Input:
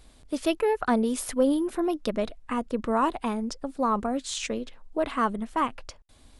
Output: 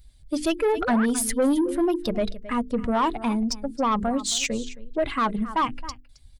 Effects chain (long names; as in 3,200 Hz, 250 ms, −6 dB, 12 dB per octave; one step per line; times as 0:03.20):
spectral dynamics exaggerated over time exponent 1.5
low-shelf EQ 420 Hz +10.5 dB
mains-hum notches 50/100/150/200/250/300/350/400/450 Hz
on a send: single-tap delay 268 ms −19.5 dB
on the sum: sound drawn into the spectrogram rise, 0:00.77–0:01.06, 260–1,900 Hz −32 dBFS
tilt shelving filter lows −5 dB
in parallel at +2 dB: brickwall limiter −21 dBFS, peak gain reduction 10.5 dB
on the sum: soft clipping −16 dBFS, distortion −15 dB